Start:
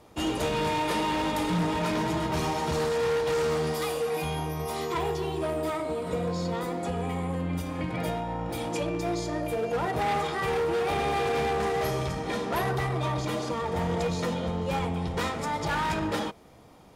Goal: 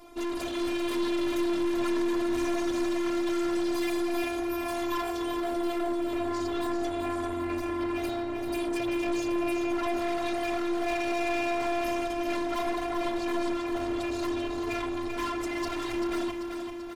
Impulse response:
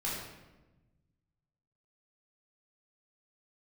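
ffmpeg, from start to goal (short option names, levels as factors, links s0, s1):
-af "aecho=1:1:3.8:0.96,afftfilt=real='hypot(re,im)*cos(PI*b)':imag='0':win_size=512:overlap=0.75,aeval=exprs='(tanh(70.8*val(0)+0.35)-tanh(0.35))/70.8':c=same,aecho=1:1:389|778|1167|1556|1945|2334|2723:0.447|0.255|0.145|0.0827|0.0472|0.0269|0.0153,volume=2.24"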